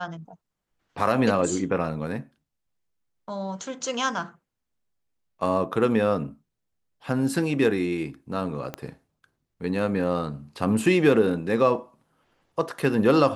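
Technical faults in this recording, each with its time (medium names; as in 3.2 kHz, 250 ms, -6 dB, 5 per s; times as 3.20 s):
8.74 s: pop -17 dBFS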